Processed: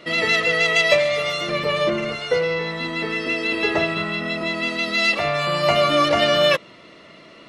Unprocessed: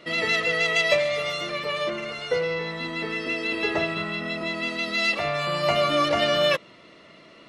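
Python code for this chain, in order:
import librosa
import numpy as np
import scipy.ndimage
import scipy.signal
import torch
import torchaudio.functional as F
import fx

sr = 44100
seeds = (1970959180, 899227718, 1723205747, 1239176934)

y = fx.low_shelf(x, sr, hz=440.0, db=8.0, at=(1.48, 2.16))
y = y * librosa.db_to_amplitude(4.5)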